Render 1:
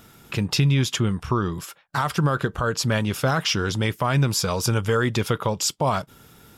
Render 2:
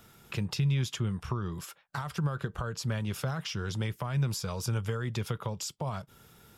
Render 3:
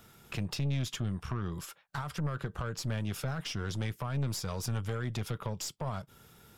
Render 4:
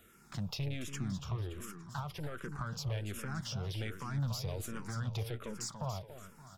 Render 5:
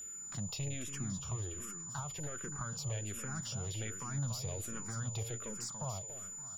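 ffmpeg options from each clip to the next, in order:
ffmpeg -i in.wav -filter_complex "[0:a]equalizer=frequency=280:width=6.8:gain=-9,acrossover=split=180[link_01][link_02];[link_02]acompressor=threshold=-28dB:ratio=6[link_03];[link_01][link_03]amix=inputs=2:normalize=0,volume=-6.5dB" out.wav
ffmpeg -i in.wav -af "aeval=exprs='(tanh(28.2*val(0)+0.45)-tanh(0.45))/28.2':channel_layout=same,volume=1dB" out.wav
ffmpeg -i in.wav -filter_complex "[0:a]aecho=1:1:286|572|858|1144|1430:0.376|0.158|0.0663|0.0278|0.0117,asplit=2[link_01][link_02];[link_02]afreqshift=-1.3[link_03];[link_01][link_03]amix=inputs=2:normalize=1,volume=-1.5dB" out.wav
ffmpeg -i in.wav -af "aeval=exprs='val(0)+0.00891*sin(2*PI*7000*n/s)':channel_layout=same,volume=-2.5dB" out.wav

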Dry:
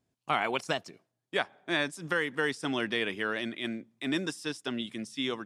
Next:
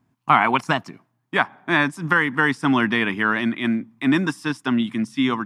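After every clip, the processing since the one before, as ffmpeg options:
ffmpeg -i in.wav -af "equalizer=frequency=125:width_type=o:width=1:gain=7,equalizer=frequency=250:width_type=o:width=1:gain=9,equalizer=frequency=500:width_type=o:width=1:gain=-9,equalizer=frequency=1000:width_type=o:width=1:gain=12,equalizer=frequency=2000:width_type=o:width=1:gain=3,equalizer=frequency=4000:width_type=o:width=1:gain=-4,equalizer=frequency=8000:width_type=o:width=1:gain=-5,volume=6.5dB" out.wav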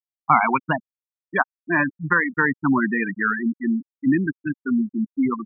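ffmpeg -i in.wav -af "afftfilt=real='re*gte(hypot(re,im),0.282)':imag='im*gte(hypot(re,im),0.282)':win_size=1024:overlap=0.75" out.wav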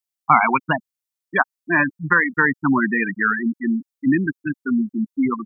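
ffmpeg -i in.wav -af "highshelf=frequency=3000:gain=9,volume=1dB" out.wav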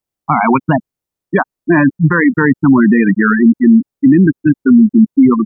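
ffmpeg -i in.wav -af "tiltshelf=frequency=970:gain=9,alimiter=level_in=10.5dB:limit=-1dB:release=50:level=0:latency=1,volume=-1dB" out.wav

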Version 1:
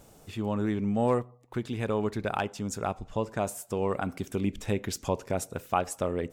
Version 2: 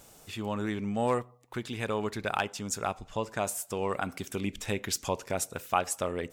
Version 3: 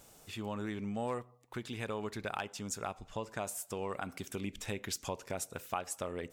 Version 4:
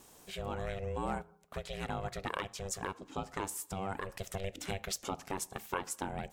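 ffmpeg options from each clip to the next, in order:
ffmpeg -i in.wav -af "tiltshelf=frequency=890:gain=-5" out.wav
ffmpeg -i in.wav -af "acompressor=threshold=-32dB:ratio=2,volume=-4dB" out.wav
ffmpeg -i in.wav -af "aeval=exprs='val(0)*sin(2*PI*290*n/s)':channel_layout=same,volume=3.5dB" out.wav

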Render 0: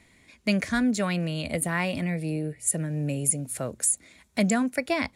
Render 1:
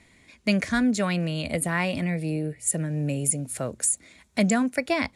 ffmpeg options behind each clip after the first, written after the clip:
ffmpeg -i in.wav -af "lowpass=11000,volume=1.5dB" out.wav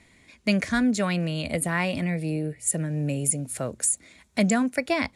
ffmpeg -i in.wav -af anull out.wav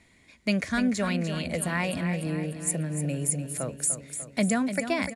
ffmpeg -i in.wav -af "aecho=1:1:297|594|891|1188|1485|1782:0.335|0.184|0.101|0.0557|0.0307|0.0169,volume=-3dB" out.wav

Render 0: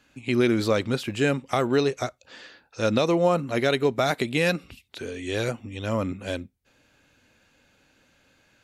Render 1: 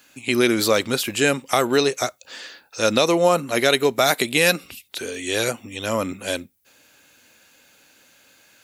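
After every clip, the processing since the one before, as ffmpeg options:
ffmpeg -i in.wav -af "aemphasis=mode=production:type=bsi,volume=5.5dB" out.wav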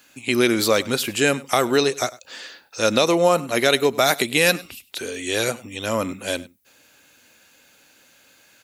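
ffmpeg -i in.wav -af "aecho=1:1:100:0.0944" out.wav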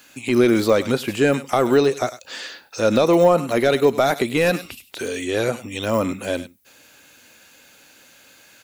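ffmpeg -i in.wav -af "deesser=0.85,volume=4.5dB" out.wav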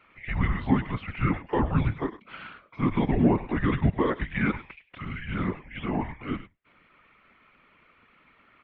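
ffmpeg -i in.wav -af "afftfilt=real='hypot(re,im)*cos(2*PI*random(0))':imag='hypot(re,im)*sin(2*PI*random(1))':win_size=512:overlap=0.75,highpass=frequency=350:width_type=q:width=0.5412,highpass=frequency=350:width_type=q:width=1.307,lowpass=frequency=3000:width_type=q:width=0.5176,lowpass=frequency=3000:width_type=q:width=0.7071,lowpass=frequency=3000:width_type=q:width=1.932,afreqshift=-310" out.wav

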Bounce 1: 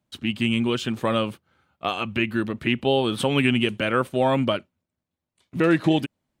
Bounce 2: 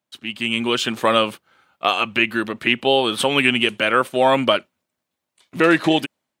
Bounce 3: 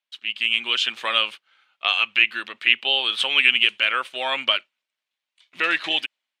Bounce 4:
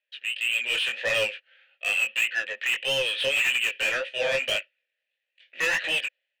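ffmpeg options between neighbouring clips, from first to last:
ffmpeg -i in.wav -af "highpass=frequency=630:poles=1,dynaudnorm=framelen=210:gausssize=5:maxgain=12.5dB" out.wav
ffmpeg -i in.wav -af "bandpass=frequency=2900:width_type=q:width=1.5:csg=0,volume=3dB" out.wav
ffmpeg -i in.wav -filter_complex "[0:a]asplit=3[link_01][link_02][link_03];[link_01]bandpass=frequency=530:width_type=q:width=8,volume=0dB[link_04];[link_02]bandpass=frequency=1840:width_type=q:width=8,volume=-6dB[link_05];[link_03]bandpass=frequency=2480:width_type=q:width=8,volume=-9dB[link_06];[link_04][link_05][link_06]amix=inputs=3:normalize=0,asplit=2[link_07][link_08];[link_08]highpass=frequency=720:poles=1,volume=26dB,asoftclip=type=tanh:threshold=-13dB[link_09];[link_07][link_09]amix=inputs=2:normalize=0,lowpass=frequency=5400:poles=1,volume=-6dB,flanger=delay=16:depth=7:speed=1.7" out.wav

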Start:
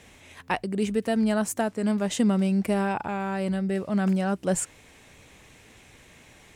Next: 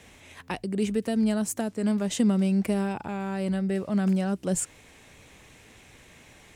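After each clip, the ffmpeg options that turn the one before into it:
ffmpeg -i in.wav -filter_complex "[0:a]acrossover=split=460|3000[link_01][link_02][link_03];[link_02]acompressor=threshold=-35dB:ratio=6[link_04];[link_01][link_04][link_03]amix=inputs=3:normalize=0" out.wav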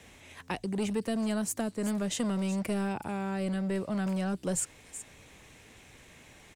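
ffmpeg -i in.wav -filter_complex "[0:a]acrossover=split=430|4100[link_01][link_02][link_03];[link_01]volume=28dB,asoftclip=hard,volume=-28dB[link_04];[link_03]aecho=1:1:376:0.316[link_05];[link_04][link_02][link_05]amix=inputs=3:normalize=0,volume=-2dB" out.wav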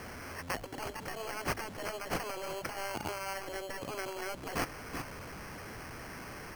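ffmpeg -i in.wav -af "aeval=exprs='val(0)+0.5*0.00668*sgn(val(0))':channel_layout=same,afftfilt=real='re*lt(hypot(re,im),0.1)':imag='im*lt(hypot(re,im),0.1)':win_size=1024:overlap=0.75,acrusher=samples=12:mix=1:aa=0.000001,volume=1dB" out.wav

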